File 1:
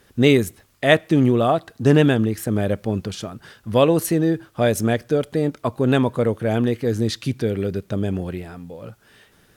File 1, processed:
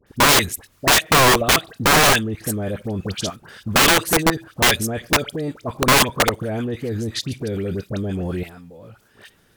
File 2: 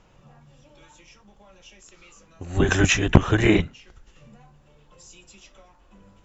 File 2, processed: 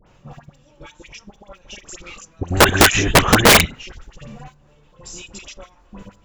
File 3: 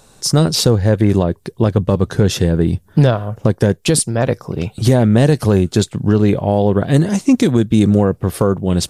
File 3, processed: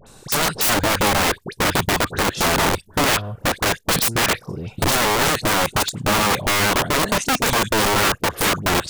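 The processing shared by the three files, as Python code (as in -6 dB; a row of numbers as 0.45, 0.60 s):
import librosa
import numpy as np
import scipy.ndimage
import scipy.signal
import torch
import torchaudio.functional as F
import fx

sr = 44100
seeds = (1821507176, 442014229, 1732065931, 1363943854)

y = fx.level_steps(x, sr, step_db=17)
y = fx.dispersion(y, sr, late='highs', ms=68.0, hz=1500.0)
y = (np.mod(10.0 ** (18.0 / 20.0) * y + 1.0, 2.0) - 1.0) / 10.0 ** (18.0 / 20.0)
y = y * 10.0 ** (-20 / 20.0) / np.sqrt(np.mean(np.square(y)))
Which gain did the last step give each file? +10.0, +15.5, +5.5 dB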